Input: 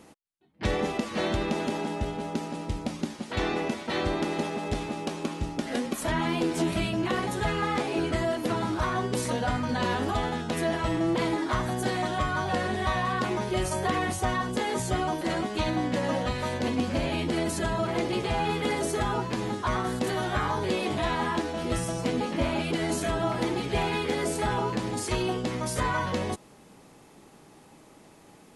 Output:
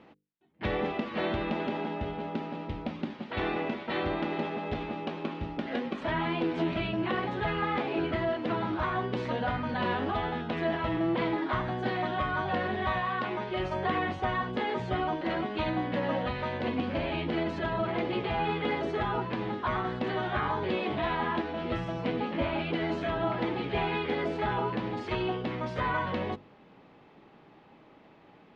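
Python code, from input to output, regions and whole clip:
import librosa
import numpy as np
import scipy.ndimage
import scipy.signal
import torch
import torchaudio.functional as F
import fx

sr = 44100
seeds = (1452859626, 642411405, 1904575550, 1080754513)

y = fx.chain(x, sr, fx.lowpass(hz=9600.0, slope=12),
    fx.low_shelf(hz=420.0, db=-5.5), at=(12.98, 13.6))
y = scipy.signal.sosfilt(scipy.signal.butter(4, 3400.0, 'lowpass', fs=sr, output='sos'), y)
y = fx.low_shelf(y, sr, hz=75.0, db=-7.0)
y = fx.hum_notches(y, sr, base_hz=50, count=10)
y = y * librosa.db_to_amplitude(-1.5)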